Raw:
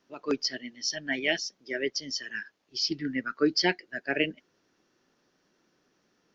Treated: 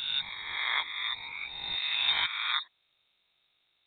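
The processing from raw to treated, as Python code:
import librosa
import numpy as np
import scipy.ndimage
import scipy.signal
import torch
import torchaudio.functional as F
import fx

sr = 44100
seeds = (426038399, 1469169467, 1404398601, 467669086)

y = fx.spec_swells(x, sr, rise_s=2.18)
y = fx.stretch_grains(y, sr, factor=0.61, grain_ms=41.0)
y = fx.freq_invert(y, sr, carrier_hz=4000)
y = y * librosa.db_to_amplitude(-5.0)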